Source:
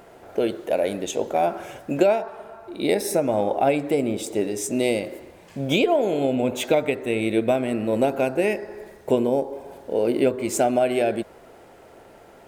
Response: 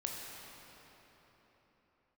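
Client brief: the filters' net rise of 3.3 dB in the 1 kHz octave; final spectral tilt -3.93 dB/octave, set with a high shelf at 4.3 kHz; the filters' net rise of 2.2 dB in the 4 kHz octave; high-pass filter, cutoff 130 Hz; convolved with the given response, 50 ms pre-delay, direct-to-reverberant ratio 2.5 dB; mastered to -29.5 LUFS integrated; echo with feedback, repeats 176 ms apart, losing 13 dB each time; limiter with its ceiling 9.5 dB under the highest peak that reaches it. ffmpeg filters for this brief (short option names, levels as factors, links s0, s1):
-filter_complex "[0:a]highpass=130,equalizer=f=1000:t=o:g=5.5,equalizer=f=4000:t=o:g=5.5,highshelf=f=4300:g=-6,alimiter=limit=0.211:level=0:latency=1,aecho=1:1:176|352|528:0.224|0.0493|0.0108,asplit=2[s0][s1];[1:a]atrim=start_sample=2205,adelay=50[s2];[s1][s2]afir=irnorm=-1:irlink=0,volume=0.631[s3];[s0][s3]amix=inputs=2:normalize=0,volume=0.501"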